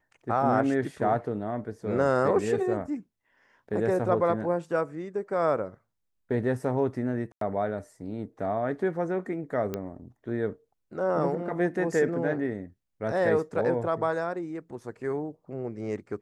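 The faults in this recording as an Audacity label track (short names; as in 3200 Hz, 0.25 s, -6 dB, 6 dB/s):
7.320000	7.410000	gap 93 ms
9.740000	9.740000	pop -18 dBFS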